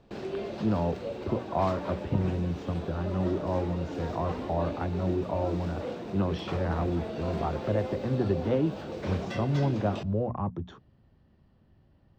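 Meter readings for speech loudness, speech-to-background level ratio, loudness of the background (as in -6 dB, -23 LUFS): -31.0 LUFS, 6.5 dB, -37.5 LUFS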